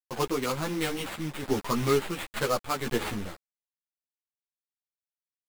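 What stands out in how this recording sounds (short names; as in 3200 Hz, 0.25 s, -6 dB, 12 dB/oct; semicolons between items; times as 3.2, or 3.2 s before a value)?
a quantiser's noise floor 6-bit, dither none; random-step tremolo 3.5 Hz; aliases and images of a low sample rate 5800 Hz, jitter 20%; a shimmering, thickened sound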